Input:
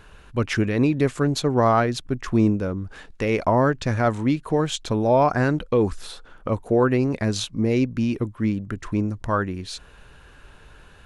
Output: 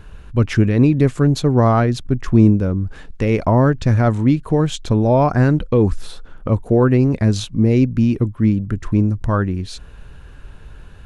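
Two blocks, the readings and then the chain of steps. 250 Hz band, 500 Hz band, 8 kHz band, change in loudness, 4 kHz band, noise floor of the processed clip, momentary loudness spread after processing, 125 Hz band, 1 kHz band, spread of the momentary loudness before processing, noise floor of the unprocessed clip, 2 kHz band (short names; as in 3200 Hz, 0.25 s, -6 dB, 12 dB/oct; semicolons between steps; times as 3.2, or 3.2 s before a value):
+6.5 dB, +3.0 dB, 0.0 dB, +6.0 dB, 0.0 dB, -39 dBFS, 8 LU, +10.0 dB, +1.0 dB, 11 LU, -49 dBFS, +0.5 dB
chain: low shelf 270 Hz +12 dB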